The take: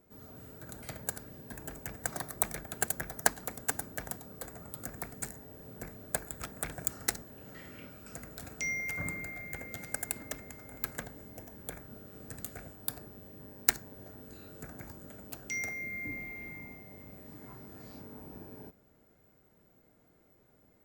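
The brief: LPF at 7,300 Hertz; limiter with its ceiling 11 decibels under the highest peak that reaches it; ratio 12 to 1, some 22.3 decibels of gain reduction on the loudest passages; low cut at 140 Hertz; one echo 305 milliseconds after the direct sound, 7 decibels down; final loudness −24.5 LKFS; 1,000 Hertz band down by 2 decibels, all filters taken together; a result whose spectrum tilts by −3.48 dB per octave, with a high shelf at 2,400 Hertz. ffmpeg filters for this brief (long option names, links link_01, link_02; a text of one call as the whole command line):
ffmpeg -i in.wav -af "highpass=140,lowpass=7300,equalizer=frequency=1000:width_type=o:gain=-4,highshelf=frequency=2400:gain=6,acompressor=threshold=-44dB:ratio=12,alimiter=level_in=9dB:limit=-24dB:level=0:latency=1,volume=-9dB,aecho=1:1:305:0.447,volume=25dB" out.wav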